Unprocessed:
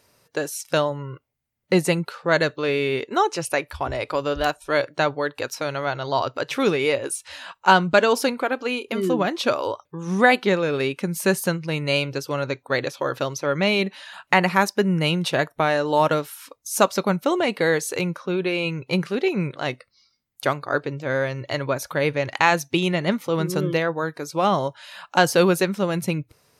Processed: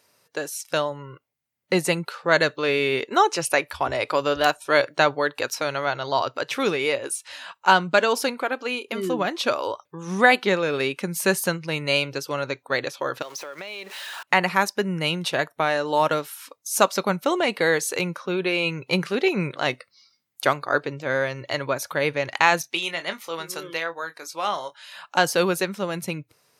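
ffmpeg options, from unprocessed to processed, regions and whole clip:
ffmpeg -i in.wav -filter_complex "[0:a]asettb=1/sr,asplit=3[link_01][link_02][link_03];[link_01]atrim=end=13.224[link_04];[link_02]atrim=start=13.22:end=14.23,asetpts=PTS-STARTPTS,afade=type=in:duration=0.004:curve=qsin,afade=type=out:start_time=1.006:duration=0.004:curve=qsin,aeval=exprs='val(0)+0.5*0.02*sgn(val(0))':channel_layout=same,highpass=400,acompressor=threshold=-29dB:ratio=12:attack=3.2:release=140:knee=1:detection=peak[link_05];[link_03]atrim=start=14.226[link_06];[link_04][link_05]acrossfade=duration=0.004:curve1=hsin:curve2=qsin[link_07];[link_07][link_06]acrossfade=duration=0.004:curve1=qsin:curve2=hsin,asettb=1/sr,asplit=3[link_08][link_09][link_10];[link_08]atrim=end=22.614[link_11];[link_09]atrim=start=22.61:end=24.93,asetpts=PTS-STARTPTS,afade=type=in:duration=0.004:curve=qsin,afade=type=out:start_time=2.316:duration=0.004:curve=qsin,highpass=frequency=1100:poles=1,asplit=2[link_12][link_13];[link_13]adelay=24,volume=-10dB[link_14];[link_12][link_14]amix=inputs=2:normalize=0,atrim=end_sample=102312[link_15];[link_10]atrim=start=24.926[link_16];[link_11][link_15]acrossfade=duration=0.004:curve1=hsin:curve2=qsin[link_17];[link_17][link_16]acrossfade=duration=0.004:curve1=qsin:curve2=hsin,highpass=110,lowshelf=frequency=490:gain=-6,dynaudnorm=framelen=200:gausssize=21:maxgain=11.5dB,volume=-1dB" out.wav

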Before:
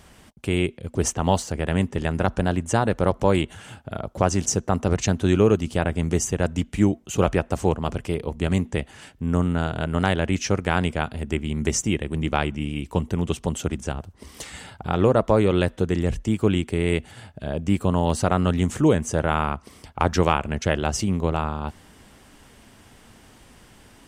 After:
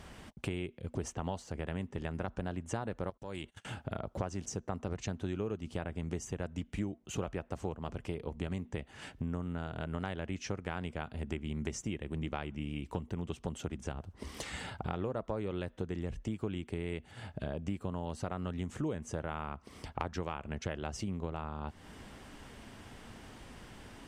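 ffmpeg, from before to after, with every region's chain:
ffmpeg -i in.wav -filter_complex "[0:a]asettb=1/sr,asplit=3[link_01][link_02][link_03];[link_01]atrim=end=3.104[link_04];[link_02]atrim=start=3.1:end=3.65,asetpts=PTS-STARTPTS,afade=type=in:duration=0.004:curve=qsin,afade=type=out:start_time=0.546:duration=0.004:curve=qsin,agate=range=-37dB:threshold=-39dB:ratio=16:release=100:detection=peak,highshelf=frequency=2600:gain=10.5,acompressor=threshold=-42dB:ratio=2:attack=3.2:release=140:knee=1:detection=peak[link_05];[link_03]atrim=start=3.646[link_06];[link_04][link_05]acrossfade=duration=0.004:curve1=hsin:curve2=qsin[link_07];[link_07][link_06]acrossfade=duration=0.004:curve1=qsin:curve2=hsin,acompressor=threshold=-35dB:ratio=5,highshelf=frequency=7000:gain=-10.5" out.wav

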